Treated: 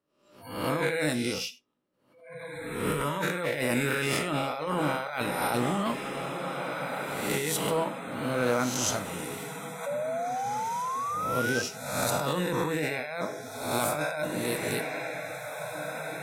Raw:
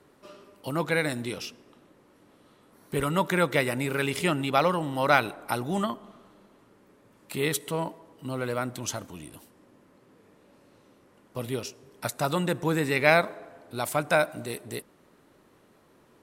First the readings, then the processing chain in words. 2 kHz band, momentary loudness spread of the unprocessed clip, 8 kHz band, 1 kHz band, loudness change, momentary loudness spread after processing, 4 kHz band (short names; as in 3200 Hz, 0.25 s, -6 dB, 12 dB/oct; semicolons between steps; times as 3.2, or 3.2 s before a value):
-2.0 dB, 17 LU, +4.5 dB, 0.0 dB, -2.5 dB, 9 LU, +1.0 dB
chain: spectral swells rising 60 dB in 0.90 s; diffused feedback echo 1.872 s, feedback 59%, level -13 dB; negative-ratio compressor -27 dBFS, ratio -1; spectral noise reduction 28 dB; non-linear reverb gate 0.12 s falling, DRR 8.5 dB; painted sound rise, 9.86–11.62, 560–1600 Hz -29 dBFS; backwards sustainer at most 92 dB/s; gain -2.5 dB